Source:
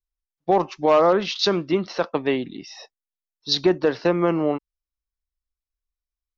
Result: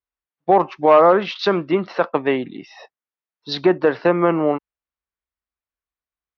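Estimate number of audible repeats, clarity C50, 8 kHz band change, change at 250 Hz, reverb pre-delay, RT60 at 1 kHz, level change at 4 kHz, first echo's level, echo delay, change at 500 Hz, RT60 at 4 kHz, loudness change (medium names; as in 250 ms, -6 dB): no echo, no reverb, no reading, +2.5 dB, no reverb, no reverb, -4.0 dB, no echo, no echo, +4.0 dB, no reverb, +3.5 dB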